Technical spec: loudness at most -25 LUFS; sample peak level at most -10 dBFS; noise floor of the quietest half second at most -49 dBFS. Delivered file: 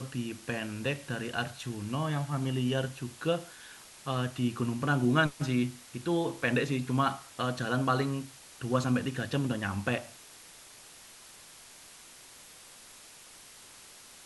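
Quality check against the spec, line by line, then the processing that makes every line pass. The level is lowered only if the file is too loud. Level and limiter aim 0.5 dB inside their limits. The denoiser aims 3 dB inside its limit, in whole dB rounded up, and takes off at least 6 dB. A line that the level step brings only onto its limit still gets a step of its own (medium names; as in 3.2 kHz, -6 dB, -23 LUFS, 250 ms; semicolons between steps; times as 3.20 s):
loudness -31.5 LUFS: pass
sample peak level -13.0 dBFS: pass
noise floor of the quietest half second -52 dBFS: pass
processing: none needed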